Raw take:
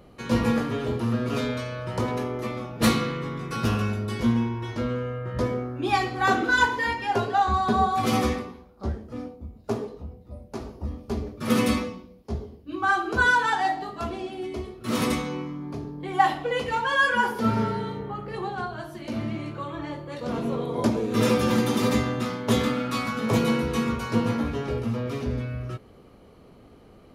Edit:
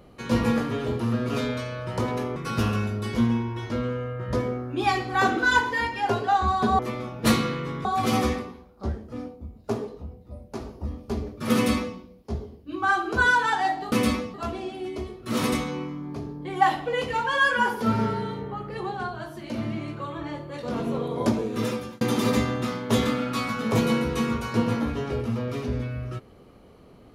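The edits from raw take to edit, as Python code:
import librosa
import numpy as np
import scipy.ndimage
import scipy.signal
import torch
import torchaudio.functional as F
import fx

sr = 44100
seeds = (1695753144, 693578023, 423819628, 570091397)

y = fx.edit(x, sr, fx.move(start_s=2.36, length_s=1.06, to_s=7.85),
    fx.duplicate(start_s=11.55, length_s=0.42, to_s=13.92),
    fx.fade_out_span(start_s=20.91, length_s=0.68), tone=tone)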